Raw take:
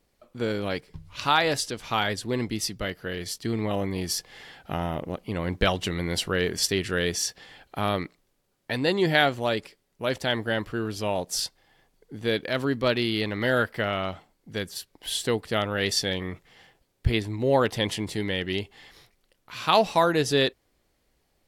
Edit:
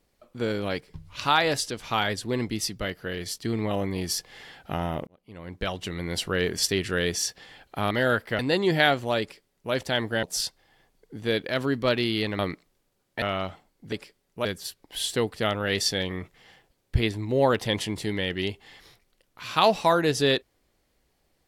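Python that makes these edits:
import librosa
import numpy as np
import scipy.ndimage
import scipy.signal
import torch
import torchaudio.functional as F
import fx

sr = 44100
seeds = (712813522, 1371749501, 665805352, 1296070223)

y = fx.edit(x, sr, fx.fade_in_span(start_s=5.07, length_s=1.37),
    fx.swap(start_s=7.91, length_s=0.83, other_s=13.38, other_length_s=0.48),
    fx.duplicate(start_s=9.55, length_s=0.53, to_s=14.56),
    fx.cut(start_s=10.58, length_s=0.64), tone=tone)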